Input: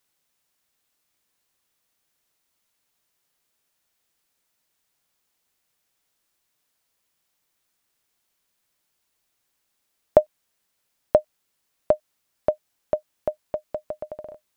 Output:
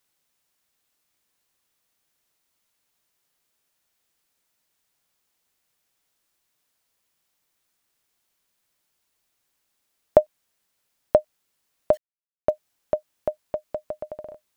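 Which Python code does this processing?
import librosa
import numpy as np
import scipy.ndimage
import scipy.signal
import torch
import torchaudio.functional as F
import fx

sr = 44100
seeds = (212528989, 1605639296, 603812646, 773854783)

y = fx.quant_dither(x, sr, seeds[0], bits=8, dither='none', at=(11.93, 12.5))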